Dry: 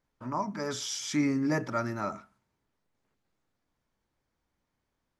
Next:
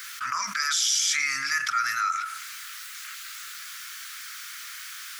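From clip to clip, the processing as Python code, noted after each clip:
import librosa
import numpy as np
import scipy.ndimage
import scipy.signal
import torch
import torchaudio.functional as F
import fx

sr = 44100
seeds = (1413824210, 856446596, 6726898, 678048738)

y = scipy.signal.sosfilt(scipy.signal.ellip(4, 1.0, 40, 1300.0, 'highpass', fs=sr, output='sos'), x)
y = fx.high_shelf(y, sr, hz=5200.0, db=7.0)
y = fx.env_flatten(y, sr, amount_pct=70)
y = F.gain(torch.from_numpy(y), 7.0).numpy()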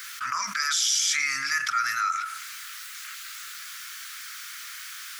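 y = x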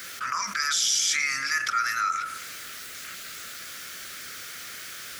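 y = fx.dmg_noise_band(x, sr, seeds[0], low_hz=62.0, high_hz=690.0, level_db=-57.0)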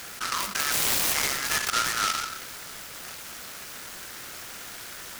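y = fx.noise_mod_delay(x, sr, seeds[1], noise_hz=3600.0, depth_ms=0.097)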